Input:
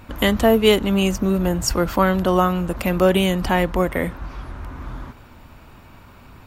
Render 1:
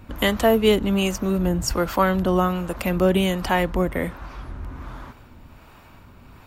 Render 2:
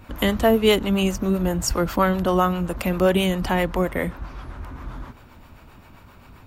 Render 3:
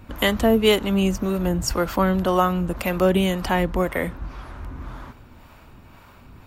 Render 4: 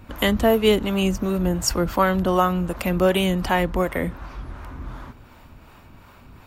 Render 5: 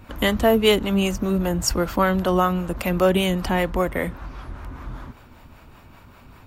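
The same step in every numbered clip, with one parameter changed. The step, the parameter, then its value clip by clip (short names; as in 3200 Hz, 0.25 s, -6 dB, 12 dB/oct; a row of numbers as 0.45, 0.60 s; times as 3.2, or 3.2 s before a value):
harmonic tremolo, rate: 1.3, 7.6, 1.9, 2.7, 5.1 Hz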